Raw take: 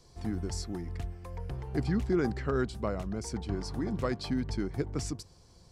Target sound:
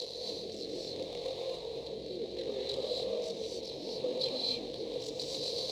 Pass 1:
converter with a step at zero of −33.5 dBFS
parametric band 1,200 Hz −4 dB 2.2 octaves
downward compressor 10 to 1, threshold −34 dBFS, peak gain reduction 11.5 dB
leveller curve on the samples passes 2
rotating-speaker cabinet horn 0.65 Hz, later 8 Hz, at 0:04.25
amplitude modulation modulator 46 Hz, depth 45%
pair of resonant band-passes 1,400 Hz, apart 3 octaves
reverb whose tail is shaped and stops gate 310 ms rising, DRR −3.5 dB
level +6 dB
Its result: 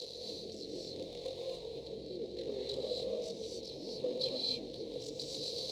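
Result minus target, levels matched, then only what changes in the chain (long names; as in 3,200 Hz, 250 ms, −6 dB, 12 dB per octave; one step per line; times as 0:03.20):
1,000 Hz band −4.5 dB; converter with a step at zero: distortion −6 dB
change: converter with a step at zero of −24 dBFS
change: parametric band 1,200 Hz +7.5 dB 2.2 octaves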